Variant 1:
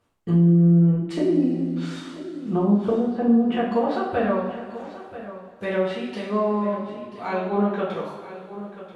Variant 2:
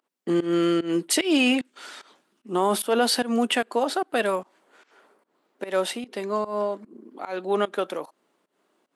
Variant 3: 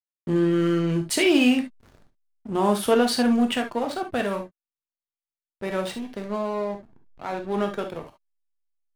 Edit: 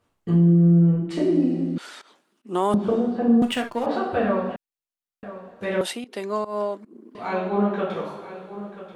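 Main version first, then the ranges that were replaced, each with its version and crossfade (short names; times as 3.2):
1
1.78–2.74 from 2
3.42–3.86 from 3
4.56–5.23 from 3
5.81–7.15 from 2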